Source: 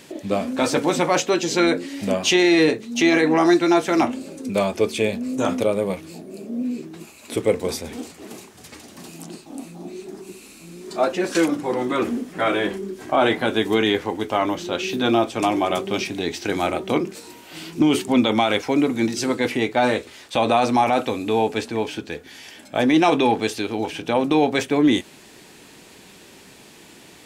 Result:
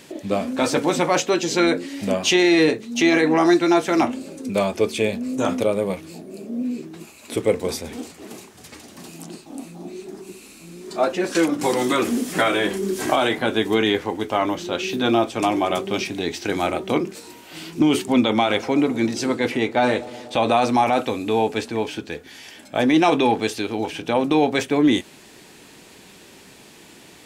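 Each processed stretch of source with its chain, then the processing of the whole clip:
11.61–13.39 bell 11000 Hz +9.5 dB 2.4 oct + three-band squash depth 100%
18.21–20.46 high shelf 8000 Hz -5.5 dB + analogue delay 0.122 s, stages 1024, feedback 75%, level -18.5 dB
whole clip: dry

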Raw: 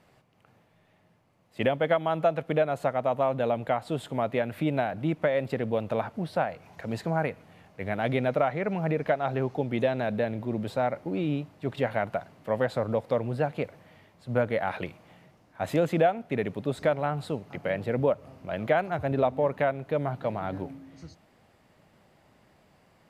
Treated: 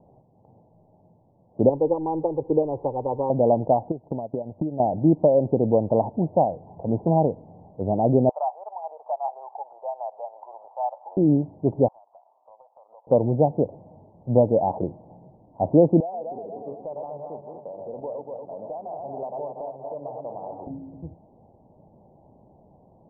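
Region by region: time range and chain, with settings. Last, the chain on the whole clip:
1.69–3.3 G.711 law mismatch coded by mu + air absorption 320 m + fixed phaser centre 990 Hz, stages 8
3.91–4.8 polynomial smoothing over 65 samples + compressor 5:1, threshold -37 dBFS + transient shaper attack +7 dB, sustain -10 dB
8.29–11.17 steep high-pass 780 Hz + upward compressor, threshold -38 dBFS
11.88–13.07 HPF 940 Hz 24 dB/oct + compressor, threshold -50 dBFS
16–20.67 regenerating reverse delay 0.118 s, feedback 69%, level -5 dB + band-pass 3200 Hz, Q 0.67 + compressor 5:1, threshold -34 dBFS
whole clip: steep low-pass 920 Hz 72 dB/oct; dynamic EQ 320 Hz, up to +4 dB, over -43 dBFS, Q 2.5; gain +7.5 dB

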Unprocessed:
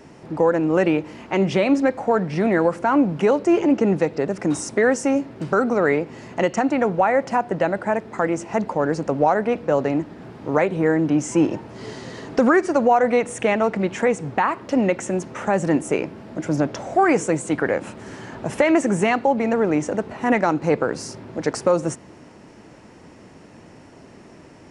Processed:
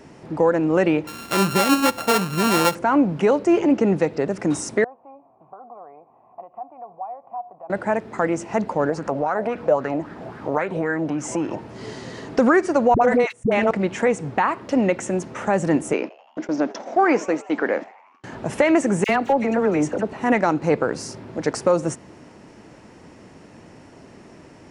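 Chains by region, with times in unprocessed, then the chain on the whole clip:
1.07–2.75 sample sorter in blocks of 32 samples + mismatched tape noise reduction encoder only
4.84–7.7 bell 2900 Hz +5 dB 0.24 oct + compressor 2:1, threshold -26 dBFS + vocal tract filter a
8.89–11.59 compressor 2:1, threshold -27 dBFS + LFO bell 3.7 Hz 570–1600 Hz +13 dB
12.94–13.71 gate -24 dBFS, range -59 dB + dispersion highs, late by 71 ms, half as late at 480 Hz + backwards sustainer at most 53 dB/s
15.93–18.24 elliptic band-pass 230–5800 Hz + gate -34 dBFS, range -37 dB + frequency-shifting echo 84 ms, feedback 64%, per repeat +120 Hz, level -22 dB
19.04–20.13 hard clip -10 dBFS + dispersion lows, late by 50 ms, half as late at 1700 Hz
whole clip: dry

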